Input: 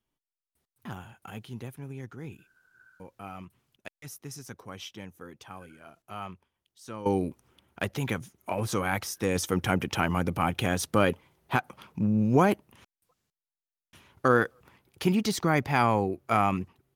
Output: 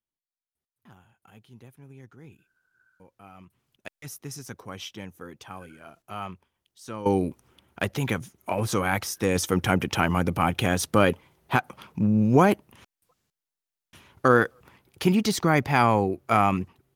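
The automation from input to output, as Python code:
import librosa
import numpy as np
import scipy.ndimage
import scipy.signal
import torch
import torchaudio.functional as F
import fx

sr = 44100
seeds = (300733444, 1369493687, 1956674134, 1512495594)

y = fx.gain(x, sr, db=fx.line((0.99, -13.5), (1.99, -7.0), (3.33, -7.0), (3.94, 3.5)))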